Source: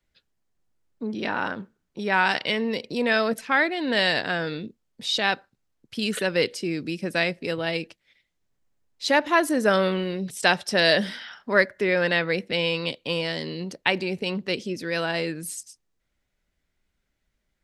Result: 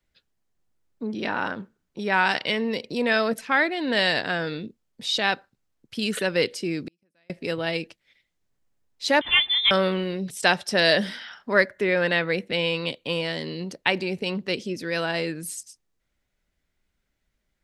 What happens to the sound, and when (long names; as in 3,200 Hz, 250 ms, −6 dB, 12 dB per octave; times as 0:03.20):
0:06.84–0:07.30: gate with flip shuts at −25 dBFS, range −42 dB
0:09.21–0:09.71: voice inversion scrambler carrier 3,800 Hz
0:11.75–0:13.47: parametric band 5,100 Hz −6.5 dB 0.26 octaves